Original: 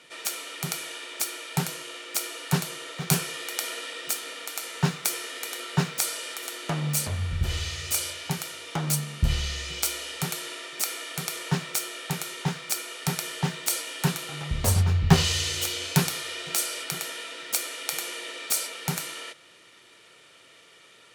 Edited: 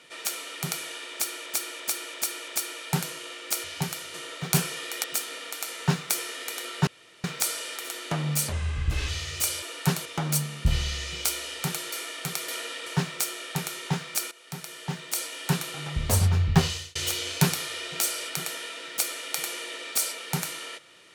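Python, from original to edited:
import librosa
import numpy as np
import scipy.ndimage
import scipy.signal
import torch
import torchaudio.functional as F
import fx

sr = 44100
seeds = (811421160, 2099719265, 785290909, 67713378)

y = fx.edit(x, sr, fx.repeat(start_s=1.12, length_s=0.34, count=5),
    fx.swap(start_s=2.28, length_s=0.43, other_s=8.13, other_length_s=0.5),
    fx.move(start_s=3.61, length_s=0.38, to_s=11.41),
    fx.insert_room_tone(at_s=5.82, length_s=0.37),
    fx.speed_span(start_s=7.1, length_s=0.49, speed=0.87),
    fx.cut(start_s=10.5, length_s=0.35),
    fx.fade_in_from(start_s=12.86, length_s=1.31, floor_db=-16.0),
    fx.fade_out_span(start_s=15.0, length_s=0.5), tone=tone)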